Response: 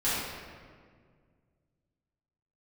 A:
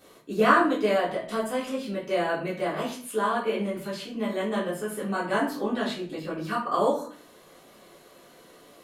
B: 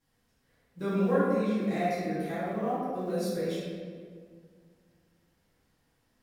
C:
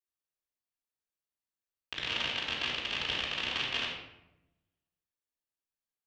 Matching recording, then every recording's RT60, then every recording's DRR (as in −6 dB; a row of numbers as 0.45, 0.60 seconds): B; 0.50, 1.9, 0.90 seconds; −8.0, −12.5, −4.5 decibels